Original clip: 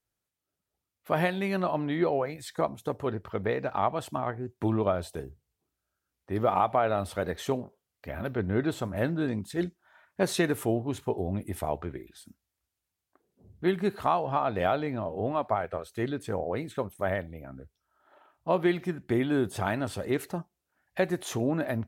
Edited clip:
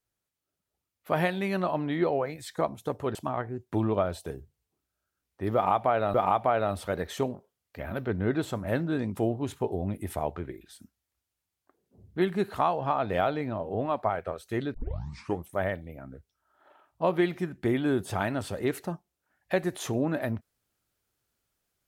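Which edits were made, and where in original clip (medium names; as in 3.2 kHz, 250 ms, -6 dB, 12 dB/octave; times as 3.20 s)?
3.15–4.04 s: delete
6.43–7.03 s: loop, 2 plays
9.46–10.63 s: delete
16.20 s: tape start 0.75 s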